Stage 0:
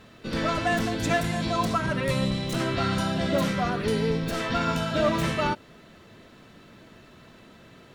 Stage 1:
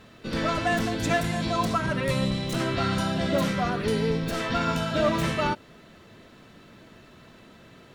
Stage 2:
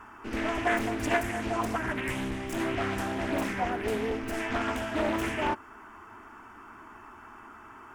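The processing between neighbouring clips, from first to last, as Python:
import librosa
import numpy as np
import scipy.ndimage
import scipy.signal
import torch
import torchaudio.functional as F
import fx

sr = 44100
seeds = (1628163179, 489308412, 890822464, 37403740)

y1 = x
y2 = fx.fixed_phaser(y1, sr, hz=800.0, stages=8)
y2 = fx.dmg_noise_band(y2, sr, seeds[0], low_hz=840.0, high_hz=1500.0, level_db=-50.0)
y2 = fx.doppler_dist(y2, sr, depth_ms=0.5)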